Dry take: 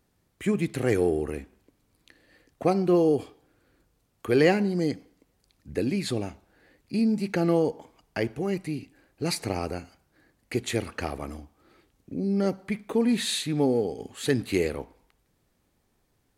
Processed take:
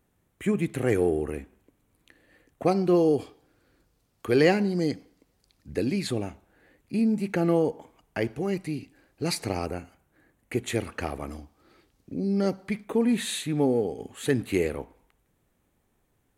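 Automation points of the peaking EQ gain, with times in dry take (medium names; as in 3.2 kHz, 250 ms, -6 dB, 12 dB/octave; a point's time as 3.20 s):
peaking EQ 4.8 kHz 0.61 oct
-9.5 dB
from 2.66 s +2 dB
from 6.07 s -8 dB
from 8.22 s 0 dB
from 9.66 s -12 dB
from 10.68 s -5 dB
from 11.31 s +2.5 dB
from 12.84 s -9 dB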